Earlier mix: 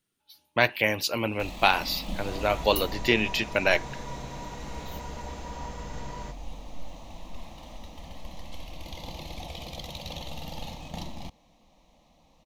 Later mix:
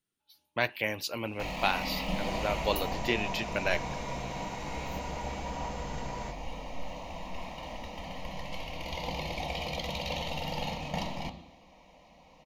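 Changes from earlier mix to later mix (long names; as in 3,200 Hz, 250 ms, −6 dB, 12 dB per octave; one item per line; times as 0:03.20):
speech −7.0 dB
reverb: on, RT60 0.85 s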